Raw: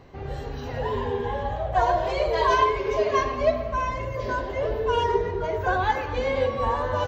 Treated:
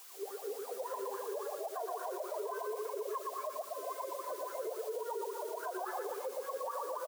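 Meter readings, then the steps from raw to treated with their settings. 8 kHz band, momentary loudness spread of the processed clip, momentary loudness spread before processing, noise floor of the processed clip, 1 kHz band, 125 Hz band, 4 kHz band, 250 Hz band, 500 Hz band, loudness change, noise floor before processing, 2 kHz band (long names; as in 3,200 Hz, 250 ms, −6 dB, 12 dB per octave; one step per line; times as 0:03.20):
can't be measured, 2 LU, 8 LU, −47 dBFS, −16.0 dB, below −40 dB, −18.0 dB, −17.0 dB, −13.5 dB, −15.0 dB, −34 dBFS, −20.5 dB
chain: notch filter 840 Hz, Q 12
shaped tremolo triangle 4.5 Hz, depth 65%
high-frequency loss of the air 380 metres
LFO wah 3.6 Hz 380–1,400 Hz, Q 15
downward compressor, threshold −42 dBFS, peak gain reduction 13.5 dB
background noise white −69 dBFS
repeating echo 117 ms, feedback 40%, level −4 dB
brickwall limiter −40 dBFS, peak gain reduction 8 dB
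Butterworth high-pass 290 Hz 36 dB per octave
high-shelf EQ 3,000 Hz +8 dB
level +8.5 dB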